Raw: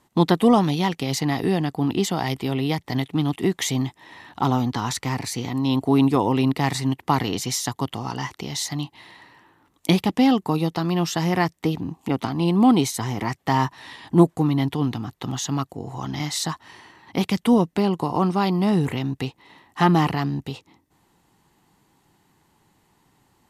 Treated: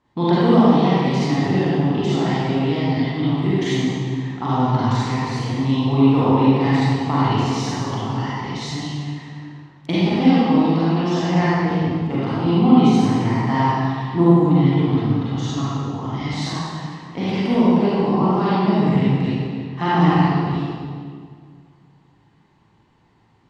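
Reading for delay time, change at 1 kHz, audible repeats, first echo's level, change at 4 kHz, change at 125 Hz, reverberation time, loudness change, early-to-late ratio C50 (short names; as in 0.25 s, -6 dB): none, +3.5 dB, none, none, 0.0 dB, +5.5 dB, 2.0 s, +4.0 dB, -7.0 dB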